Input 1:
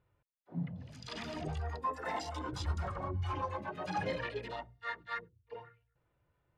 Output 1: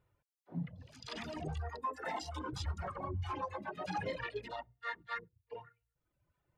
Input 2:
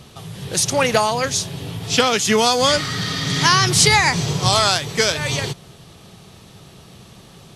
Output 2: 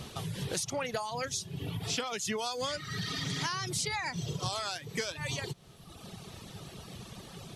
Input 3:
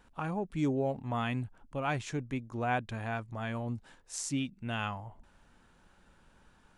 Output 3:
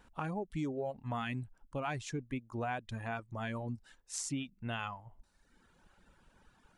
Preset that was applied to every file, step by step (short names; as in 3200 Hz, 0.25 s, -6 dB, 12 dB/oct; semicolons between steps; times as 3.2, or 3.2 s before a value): reverb removal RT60 1.1 s; compressor 6:1, threshold -33 dBFS